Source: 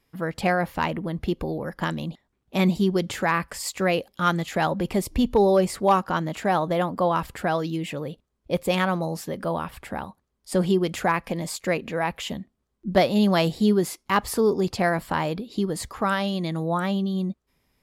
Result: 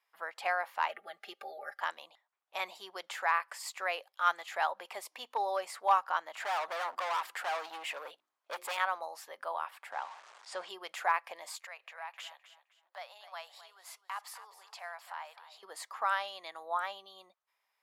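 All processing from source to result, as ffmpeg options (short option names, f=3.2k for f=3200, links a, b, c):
-filter_complex "[0:a]asettb=1/sr,asplit=3[a][b][c];[a]atrim=end=0.894[d];[b]atrim=start=0.89:end=1.81,asetpts=PTS-STARTPTS,afade=t=in:d=0.004:c=qsin,afade=t=out:st=0.916:d=0.004:c=qsin,asuperstop=centerf=1000:order=8:qfactor=3.2,aecho=1:1:5:0.84,atrim=end_sample=40572[e];[c]atrim=start=1.806[f];[d][e]acrossfade=d=0.004:c1=hsin:c2=qsin[g];[g][f]acrossfade=d=0.004:c1=qsin:c2=hsin,asettb=1/sr,asplit=3[h][i][j];[h]atrim=end=6.404[k];[i]atrim=start=6.4:end=8.77,asetpts=PTS-STARTPTS,afade=t=in:d=0.004:c=qsin,afade=t=out:st=2.366:d=0.004:c=qsin,acontrast=65,bandreject=f=51.21:t=h:w=4,bandreject=f=102.42:t=h:w=4,bandreject=f=153.63:t=h:w=4,bandreject=f=204.84:t=h:w=4,bandreject=f=256.05:t=h:w=4,bandreject=f=307.26:t=h:w=4,bandreject=f=358.47:t=h:w=4,bandreject=f=409.68:t=h:w=4,volume=23dB,asoftclip=hard,volume=-23dB[l];[j]atrim=start=8.766[m];[k][l]acrossfade=d=0.004:c1=hsin:c2=qsin[n];[n][m]acrossfade=d=0.004:c1=qsin:c2=hsin,asettb=1/sr,asplit=3[o][p][q];[o]atrim=end=9.924[r];[p]atrim=start=9.92:end=10.69,asetpts=PTS-STARTPTS,afade=t=in:d=0.004:c=qsin,afade=t=out:st=0.766:d=0.004:c=qsin,aeval=exprs='val(0)+0.5*0.0158*sgn(val(0))':c=same,deesser=0.3,lowpass=f=7.7k:w=0.5412,lowpass=f=7.7k:w=1.3066[s];[q]atrim=start=10.686[t];[r][s]acrossfade=d=0.004:c1=hsin:c2=qsin[u];[u][t]acrossfade=d=0.004:c1=qsin:c2=hsin,asettb=1/sr,asplit=3[v][w][x];[v]atrim=end=11.664[y];[w]atrim=start=11.66:end=15.63,asetpts=PTS-STARTPTS,afade=t=in:d=0.004:c=qsin,afade=t=out:st=3.966:d=0.004:c=qsin,acompressor=threshold=-33dB:ratio=3:attack=3.2:release=140:knee=1:detection=peak,highpass=f=620:w=0.5412,highpass=f=620:w=1.3066,aecho=1:1:259|518|777:0.211|0.0592|0.0166,atrim=end_sample=175077[z];[x]atrim=start=15.626[aa];[y][z]acrossfade=d=0.004:c1=hsin:c2=qsin[ab];[ab][aa]acrossfade=d=0.004:c1=qsin:c2=hsin,highpass=f=780:w=0.5412,highpass=f=780:w=1.3066,highshelf=f=2.6k:g=-9.5,volume=-3dB"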